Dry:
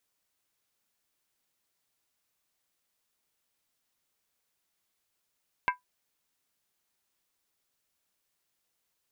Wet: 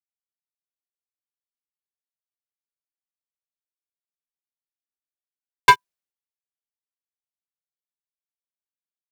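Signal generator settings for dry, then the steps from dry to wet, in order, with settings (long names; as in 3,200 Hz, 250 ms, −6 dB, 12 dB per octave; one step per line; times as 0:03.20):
struck skin, lowest mode 994 Hz, decay 0.14 s, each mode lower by 3.5 dB, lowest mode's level −20 dB
leveller curve on the samples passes 5
multiband upward and downward expander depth 100%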